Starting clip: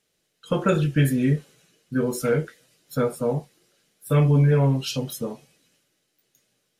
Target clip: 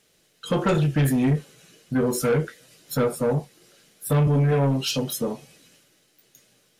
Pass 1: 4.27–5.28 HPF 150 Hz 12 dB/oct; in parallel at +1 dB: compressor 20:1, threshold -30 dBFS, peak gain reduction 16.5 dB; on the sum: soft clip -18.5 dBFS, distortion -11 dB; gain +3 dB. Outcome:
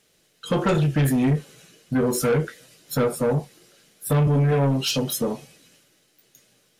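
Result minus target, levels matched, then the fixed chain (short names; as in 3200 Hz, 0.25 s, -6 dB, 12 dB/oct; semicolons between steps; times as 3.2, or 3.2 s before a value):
compressor: peak gain reduction -9.5 dB
4.27–5.28 HPF 150 Hz 12 dB/oct; in parallel at +1 dB: compressor 20:1, threshold -40 dBFS, peak gain reduction 26 dB; on the sum: soft clip -18.5 dBFS, distortion -12 dB; gain +3 dB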